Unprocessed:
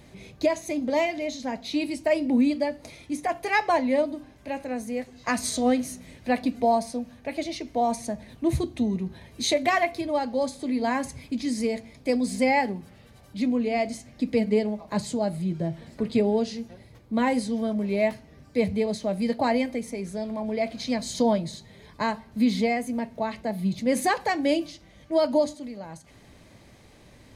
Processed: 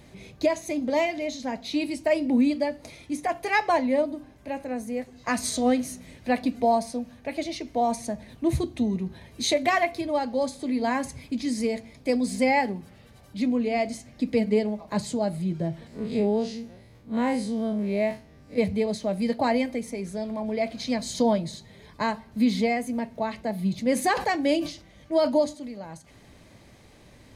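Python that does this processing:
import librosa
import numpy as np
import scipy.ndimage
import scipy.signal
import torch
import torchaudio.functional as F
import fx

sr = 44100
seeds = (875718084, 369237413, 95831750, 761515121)

y = fx.peak_eq(x, sr, hz=3900.0, db=-3.5, octaves=2.5, at=(3.86, 5.31))
y = fx.spec_blur(y, sr, span_ms=82.0, at=(15.87, 18.58))
y = fx.sustainer(y, sr, db_per_s=120.0, at=(24.14, 25.39), fade=0.02)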